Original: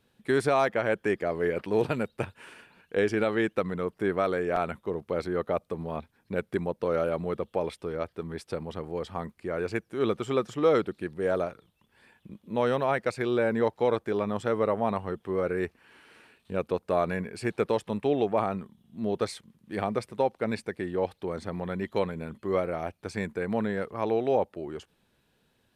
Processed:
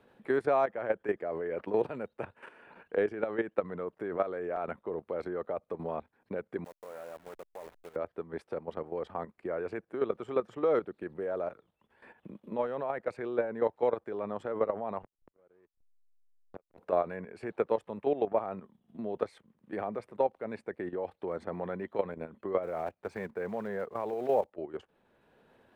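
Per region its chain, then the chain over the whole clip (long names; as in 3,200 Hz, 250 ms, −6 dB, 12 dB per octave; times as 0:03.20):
0:06.64–0:07.96: hold until the input has moved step −31.5 dBFS + first-order pre-emphasis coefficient 0.9 + highs frequency-modulated by the lows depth 0.23 ms
0:15.02–0:16.78: volume swells 204 ms + slack as between gear wheels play −30 dBFS + gate with flip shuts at −33 dBFS, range −38 dB
0:22.63–0:24.48: one scale factor per block 5 bits + notch filter 300 Hz, Q 5.5
whole clip: output level in coarse steps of 12 dB; drawn EQ curve 130 Hz 0 dB, 600 Hz +11 dB, 1,900 Hz +5 dB, 5,200 Hz −7 dB; multiband upward and downward compressor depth 40%; level −8.5 dB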